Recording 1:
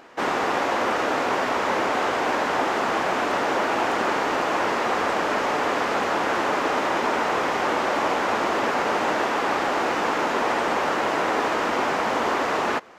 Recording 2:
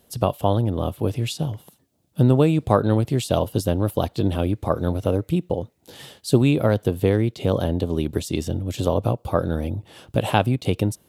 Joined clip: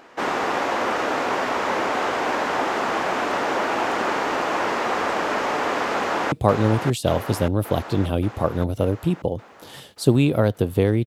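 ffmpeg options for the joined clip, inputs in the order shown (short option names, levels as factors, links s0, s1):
-filter_complex "[0:a]apad=whole_dur=11.06,atrim=end=11.06,atrim=end=6.322[s0];[1:a]atrim=start=2.578:end=7.32[s1];[s0][s1]acrossfade=d=0.004:c1=hsin:c2=hsin,asplit=2[s2][s3];[s3]afade=t=in:st=5.9:d=0.01,afade=t=out:st=6.32:d=0.01,aecho=0:1:580|1160|1740|2320|2900|3480|4060|4640|5220|5800:0.530884|0.345075|0.224299|0.145794|0.0947662|0.061598|0.0400387|0.0260252|0.0169164|0.0109956[s4];[s2][s4]amix=inputs=2:normalize=0"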